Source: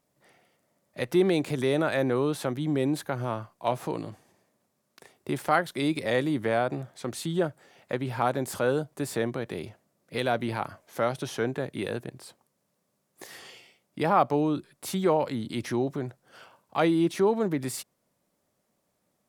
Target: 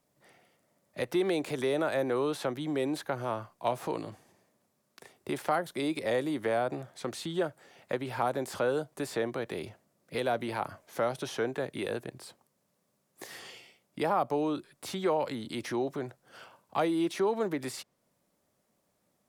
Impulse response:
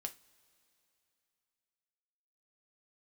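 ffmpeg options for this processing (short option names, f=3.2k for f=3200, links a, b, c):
-filter_complex "[0:a]acrossover=split=320|1100|5900[a][b][c][d];[a]acompressor=threshold=-42dB:ratio=4[e];[b]acompressor=threshold=-26dB:ratio=4[f];[c]acompressor=threshold=-38dB:ratio=4[g];[d]acompressor=threshold=-49dB:ratio=4[h];[e][f][g][h]amix=inputs=4:normalize=0"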